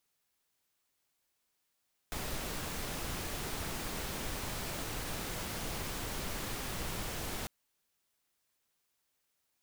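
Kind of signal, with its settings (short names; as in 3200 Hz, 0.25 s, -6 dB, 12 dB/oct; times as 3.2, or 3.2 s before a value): noise pink, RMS -38.5 dBFS 5.35 s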